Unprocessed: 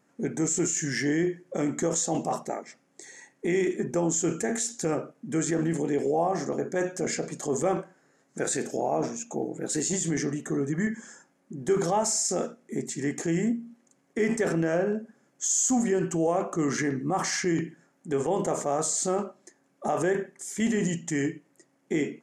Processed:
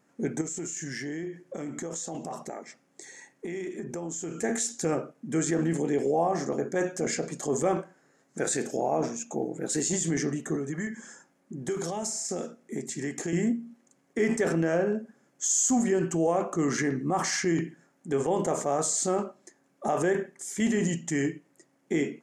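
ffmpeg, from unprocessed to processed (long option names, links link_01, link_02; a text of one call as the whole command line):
ffmpeg -i in.wav -filter_complex "[0:a]asettb=1/sr,asplit=3[link_01][link_02][link_03];[link_01]atrim=end=0.414[link_04];[link_02]atrim=start=0.41:end=4.42,asetpts=PTS-STARTPTS,afade=type=in:duration=0.004:curve=qsin,afade=type=out:start_time=4.006:duration=0.004:curve=qsin,acompressor=threshold=-33dB:ratio=4:attack=3.2:release=140:knee=1:detection=peak[link_05];[link_03]atrim=start=4.416[link_06];[link_04][link_05]acrossfade=duration=0.004:curve1=hsin:curve2=qsin[link_07];[link_07][link_06]acrossfade=duration=0.004:curve1=qsin:curve2=hsin,asettb=1/sr,asplit=3[link_08][link_09][link_10];[link_08]atrim=end=10.554[link_11];[link_09]atrim=start=10.55:end=13.33,asetpts=PTS-STARTPTS,afade=type=in:duration=0.004:curve=qsin,afade=type=out:start_time=2.776:duration=0.004:curve=qsin,acrossover=split=480|2700[link_12][link_13][link_14];[link_12]acompressor=threshold=-32dB:ratio=4[link_15];[link_13]acompressor=threshold=-39dB:ratio=4[link_16];[link_14]acompressor=threshold=-32dB:ratio=4[link_17];[link_15][link_16][link_17]amix=inputs=3:normalize=0[link_18];[link_10]atrim=start=13.326[link_19];[link_11][link_18]acrossfade=duration=0.004:curve1=hsin:curve2=qsin[link_20];[link_20][link_19]acrossfade=duration=0.004:curve1=qsin:curve2=hsin" out.wav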